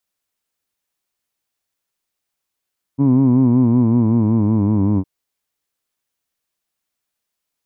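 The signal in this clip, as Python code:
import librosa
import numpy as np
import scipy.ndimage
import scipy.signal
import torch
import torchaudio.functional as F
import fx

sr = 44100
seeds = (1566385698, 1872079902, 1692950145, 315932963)

y = fx.formant_vowel(sr, seeds[0], length_s=2.06, hz=135.0, glide_st=-5.5, vibrato_hz=5.3, vibrato_st=0.9, f1_hz=260.0, f2_hz=990.0, f3_hz=2300.0)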